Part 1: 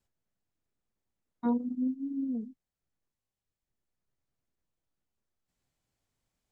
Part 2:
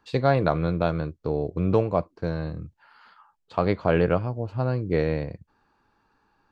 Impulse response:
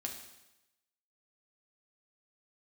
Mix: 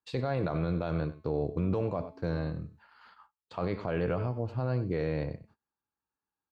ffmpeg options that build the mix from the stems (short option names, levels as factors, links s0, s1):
-filter_complex "[0:a]aeval=exprs='val(0)+0.000501*(sin(2*PI*60*n/s)+sin(2*PI*2*60*n/s)/2+sin(2*PI*3*60*n/s)/3+sin(2*PI*4*60*n/s)/4+sin(2*PI*5*60*n/s)/5)':c=same,adelay=150,volume=0.106[s0];[1:a]highpass=43,bandreject=f=216.5:t=h:w=4,bandreject=f=433:t=h:w=4,bandreject=f=649.5:t=h:w=4,bandreject=f=866:t=h:w=4,bandreject=f=1082.5:t=h:w=4,bandreject=f=1299:t=h:w=4,bandreject=f=1515.5:t=h:w=4,bandreject=f=1732:t=h:w=4,bandreject=f=1948.5:t=h:w=4,bandreject=f=2165:t=h:w=4,bandreject=f=2381.5:t=h:w=4,bandreject=f=2598:t=h:w=4,bandreject=f=2814.5:t=h:w=4,bandreject=f=3031:t=h:w=4,bandreject=f=3247.5:t=h:w=4,bandreject=f=3464:t=h:w=4,bandreject=f=3680.5:t=h:w=4,bandreject=f=3897:t=h:w=4,bandreject=f=4113.5:t=h:w=4,bandreject=f=4330:t=h:w=4,bandreject=f=4546.5:t=h:w=4,bandreject=f=4763:t=h:w=4,bandreject=f=4979.5:t=h:w=4,bandreject=f=5196:t=h:w=4,bandreject=f=5412.5:t=h:w=4,bandreject=f=5629:t=h:w=4,bandreject=f=5845.5:t=h:w=4,alimiter=limit=0.237:level=0:latency=1:release=36,volume=0.75,asplit=2[s1][s2];[s2]volume=0.141,aecho=0:1:96:1[s3];[s0][s1][s3]amix=inputs=3:normalize=0,agate=range=0.0562:threshold=0.00141:ratio=16:detection=peak,alimiter=limit=0.0944:level=0:latency=1:release=26"